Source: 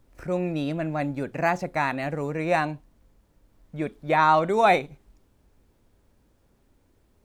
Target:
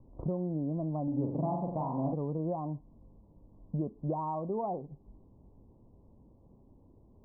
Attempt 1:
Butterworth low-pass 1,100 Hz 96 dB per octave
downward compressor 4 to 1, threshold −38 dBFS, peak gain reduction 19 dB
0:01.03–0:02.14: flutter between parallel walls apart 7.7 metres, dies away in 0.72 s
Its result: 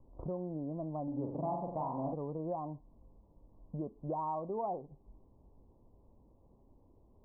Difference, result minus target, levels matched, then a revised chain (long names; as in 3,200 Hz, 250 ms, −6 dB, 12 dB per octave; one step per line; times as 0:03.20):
125 Hz band −3.5 dB
Butterworth low-pass 1,100 Hz 96 dB per octave
downward compressor 4 to 1, threshold −38 dBFS, peak gain reduction 19 dB
parametric band 160 Hz +8 dB 2.5 octaves
0:01.03–0:02.14: flutter between parallel walls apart 7.7 metres, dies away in 0.72 s